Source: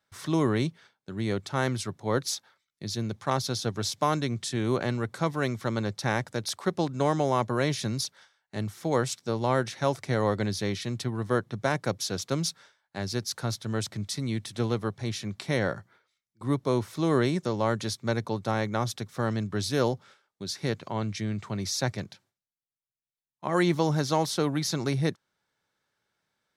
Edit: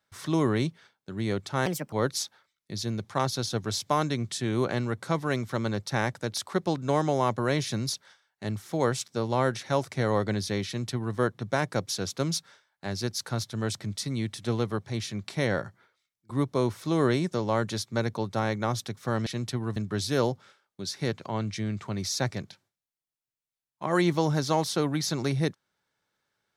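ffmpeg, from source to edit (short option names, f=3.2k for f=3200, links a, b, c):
-filter_complex "[0:a]asplit=5[a][b][c][d][e];[a]atrim=end=1.664[f];[b]atrim=start=1.66:end=2.04,asetpts=PTS-STARTPTS,asetrate=63504,aresample=44100[g];[c]atrim=start=2.036:end=19.382[h];[d]atrim=start=10.778:end=11.282[i];[e]atrim=start=19.378[j];[f][g]acrossfade=d=0.004:c1=hsin:c2=hsin[k];[k][h]acrossfade=d=0.004:c1=hsin:c2=hsin[l];[l][i]acrossfade=d=0.004:c1=hsin:c2=hsin[m];[m][j]acrossfade=d=0.004:c1=hsin:c2=hsin"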